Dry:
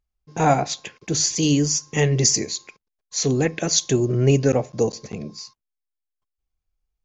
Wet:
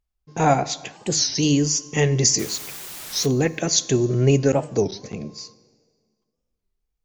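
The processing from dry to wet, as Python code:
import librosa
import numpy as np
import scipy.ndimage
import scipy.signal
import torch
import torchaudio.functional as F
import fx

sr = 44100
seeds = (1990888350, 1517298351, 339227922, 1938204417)

y = fx.quant_dither(x, sr, seeds[0], bits=6, dither='triangular', at=(2.38, 3.25), fade=0.02)
y = fx.rev_plate(y, sr, seeds[1], rt60_s=1.9, hf_ratio=0.8, predelay_ms=0, drr_db=18.0)
y = fx.record_warp(y, sr, rpm=33.33, depth_cents=250.0)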